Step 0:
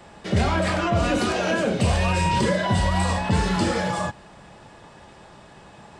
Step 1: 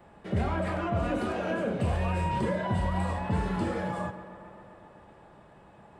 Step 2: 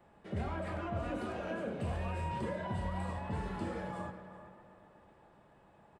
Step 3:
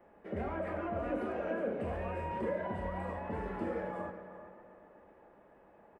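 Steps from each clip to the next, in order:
bell 5600 Hz -15 dB 1.8 oct; tape echo 0.134 s, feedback 83%, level -13 dB, low-pass 3700 Hz; gain -7 dB
notches 60/120/180 Hz; outdoor echo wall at 65 m, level -13 dB; gain -8.5 dB
graphic EQ 125/250/500/2000/4000/8000 Hz -9/+4/+7/+5/-10/-10 dB; gain -1.5 dB

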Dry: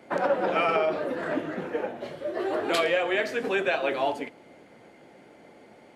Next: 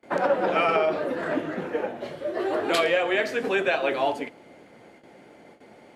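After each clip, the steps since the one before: gate with hold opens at -43 dBFS; gain +2 dB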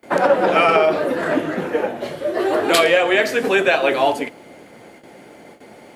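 high shelf 8600 Hz +11.5 dB; gain +7.5 dB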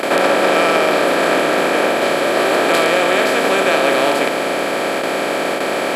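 per-bin compression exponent 0.2; gain -7 dB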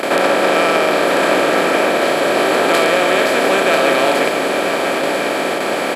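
echo 0.991 s -7.5 dB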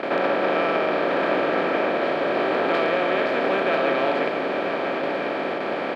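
air absorption 280 m; gain -6.5 dB

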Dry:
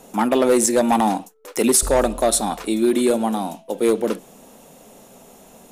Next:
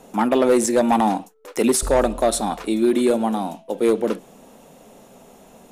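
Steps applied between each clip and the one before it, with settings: high shelf 5200 Hz -7.5 dB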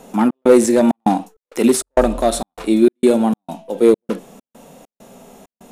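harmonic-percussive split harmonic +8 dB; step gate "xx.xxx.xx." 99 bpm -60 dB; gain -1 dB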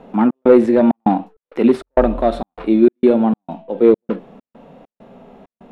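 air absorption 400 m; gain +1.5 dB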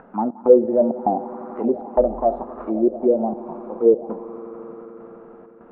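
upward compressor, threshold -33 dBFS; swelling echo 87 ms, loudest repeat 5, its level -18 dB; envelope low-pass 510–1500 Hz down, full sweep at -7 dBFS; gain -11.5 dB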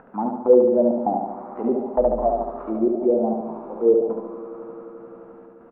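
feedback echo 72 ms, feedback 57%, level -4 dB; gain -3 dB

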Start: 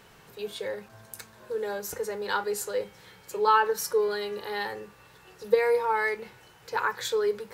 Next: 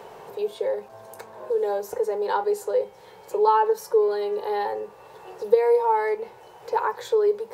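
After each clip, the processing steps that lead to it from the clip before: band shelf 620 Hz +13 dB; three-band squash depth 40%; gain -6 dB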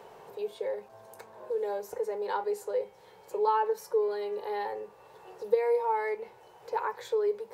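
dynamic EQ 2200 Hz, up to +5 dB, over -50 dBFS, Q 2.9; gain -7.5 dB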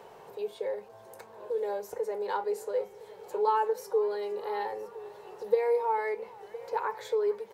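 echo 1.012 s -18 dB; warbling echo 0.452 s, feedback 72%, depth 162 cents, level -23 dB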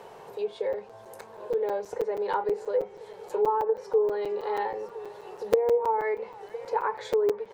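treble ducked by the level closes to 780 Hz, closed at -23 dBFS; crackling interface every 0.16 s, samples 256, zero, from 0.73; gain +4 dB

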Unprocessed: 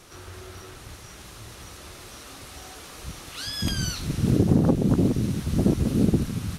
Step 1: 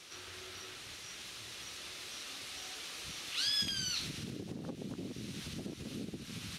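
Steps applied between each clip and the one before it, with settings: compressor 16:1, threshold -27 dBFS, peak gain reduction 14.5 dB; crackle 340/s -56 dBFS; weighting filter D; gain -9 dB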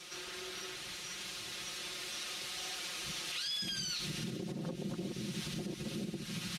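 comb 5.6 ms, depth 93%; limiter -30.5 dBFS, peak gain reduction 11.5 dB; gain +1 dB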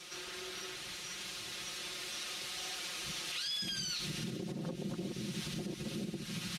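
nothing audible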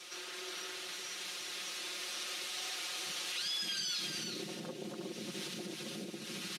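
HPF 300 Hz 12 dB/oct; echo 0.361 s -5 dB

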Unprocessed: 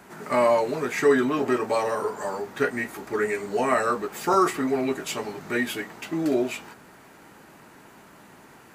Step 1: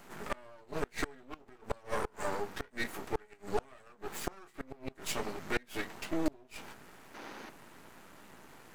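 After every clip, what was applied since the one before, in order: flipped gate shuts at -16 dBFS, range -29 dB; half-wave rectifier; spectral gain 7.15–7.5, 200–6700 Hz +9 dB; gain -1 dB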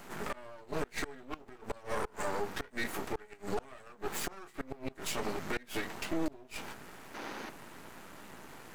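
limiter -27 dBFS, peak gain reduction 11.5 dB; gain +4.5 dB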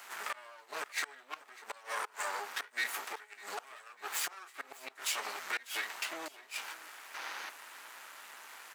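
HPF 1100 Hz 12 dB/oct; feedback echo 0.597 s, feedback 44%, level -20 dB; gain +4 dB

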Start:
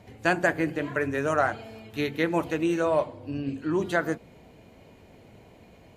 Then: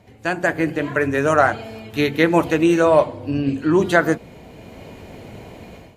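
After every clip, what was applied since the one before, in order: AGC gain up to 14 dB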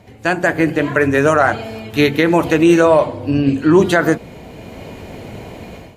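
maximiser +7 dB; gain -1 dB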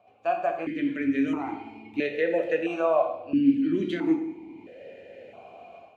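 dark delay 68 ms, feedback 80%, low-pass 580 Hz, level -21 dB; non-linear reverb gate 0.27 s falling, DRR 4 dB; vowel sequencer 1.5 Hz; gain -3.5 dB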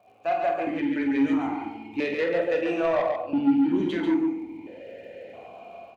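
soft clip -20.5 dBFS, distortion -13 dB; crackle 54/s -59 dBFS; on a send: loudspeakers at several distances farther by 16 m -8 dB, 48 m -5 dB; on the sum: gain +1.5 dB

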